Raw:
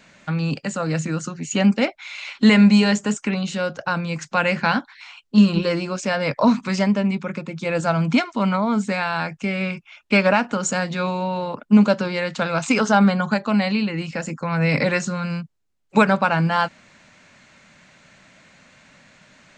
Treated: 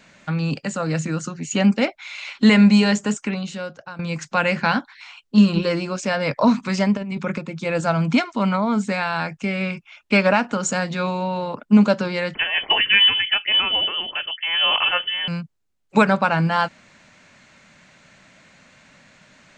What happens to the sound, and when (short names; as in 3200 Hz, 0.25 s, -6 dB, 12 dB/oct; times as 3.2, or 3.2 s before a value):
3.09–3.99 fade out, to -17 dB
6.97–7.38 negative-ratio compressor -26 dBFS
12.34–15.28 inverted band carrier 3200 Hz